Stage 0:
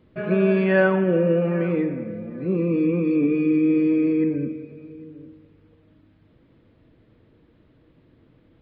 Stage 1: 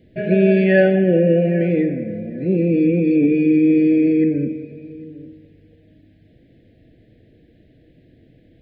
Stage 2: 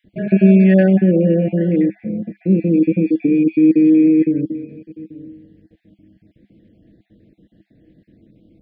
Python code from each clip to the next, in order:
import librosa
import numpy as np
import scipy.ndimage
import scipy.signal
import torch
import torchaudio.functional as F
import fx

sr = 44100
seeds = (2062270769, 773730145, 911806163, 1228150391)

y1 = scipy.signal.sosfilt(scipy.signal.cheby1(3, 1.0, [710.0, 1700.0], 'bandstop', fs=sr, output='sos'), x)
y1 = F.gain(torch.from_numpy(y1), 5.5).numpy()
y2 = fx.spec_dropout(y1, sr, seeds[0], share_pct=29)
y2 = fx.peak_eq(y2, sr, hz=200.0, db=12.5, octaves=0.34)
y2 = fx.small_body(y2, sr, hz=(320.0, 900.0), ring_ms=75, db=7)
y2 = F.gain(torch.from_numpy(y2), -3.0).numpy()